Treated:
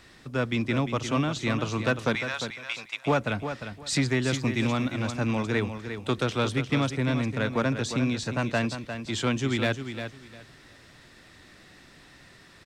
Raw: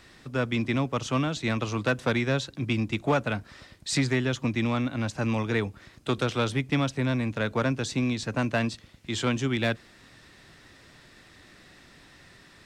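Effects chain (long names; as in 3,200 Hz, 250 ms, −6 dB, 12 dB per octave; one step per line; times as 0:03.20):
0:02.15–0:03.06: high-pass filter 790 Hz 24 dB per octave
0:04.29–0:04.93: high-shelf EQ 5,200 Hz +7 dB
repeating echo 352 ms, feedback 21%, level −9 dB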